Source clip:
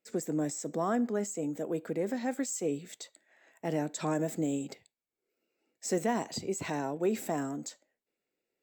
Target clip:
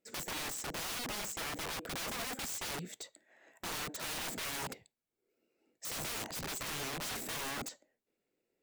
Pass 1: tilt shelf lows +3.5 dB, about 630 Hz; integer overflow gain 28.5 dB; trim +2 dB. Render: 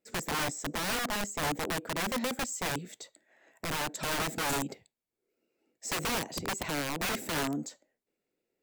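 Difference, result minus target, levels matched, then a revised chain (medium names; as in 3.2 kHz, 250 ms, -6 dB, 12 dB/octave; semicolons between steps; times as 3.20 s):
integer overflow: distortion -10 dB
tilt shelf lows +3.5 dB, about 630 Hz; integer overflow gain 36.5 dB; trim +2 dB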